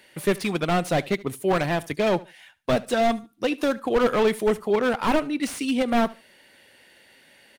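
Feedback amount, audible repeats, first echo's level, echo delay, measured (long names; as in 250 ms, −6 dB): 22%, 2, −20.5 dB, 73 ms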